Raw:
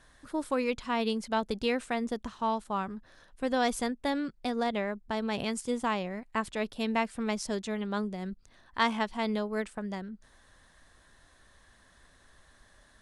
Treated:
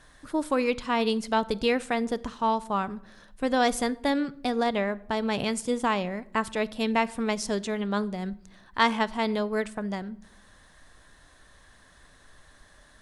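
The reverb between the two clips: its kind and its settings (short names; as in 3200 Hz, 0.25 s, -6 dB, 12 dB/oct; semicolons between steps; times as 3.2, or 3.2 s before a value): shoebox room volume 1900 m³, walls furnished, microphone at 0.43 m; gain +4.5 dB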